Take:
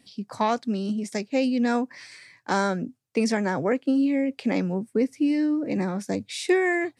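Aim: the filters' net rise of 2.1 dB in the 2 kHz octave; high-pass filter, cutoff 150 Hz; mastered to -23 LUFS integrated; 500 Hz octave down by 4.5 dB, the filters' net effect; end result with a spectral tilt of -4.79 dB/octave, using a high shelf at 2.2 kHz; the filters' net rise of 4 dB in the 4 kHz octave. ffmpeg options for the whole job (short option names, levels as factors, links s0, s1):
-af "highpass=150,equalizer=f=500:t=o:g=-6,equalizer=f=2000:t=o:g=3,highshelf=f=2200:g=-3.5,equalizer=f=4000:t=o:g=7.5,volume=1.58"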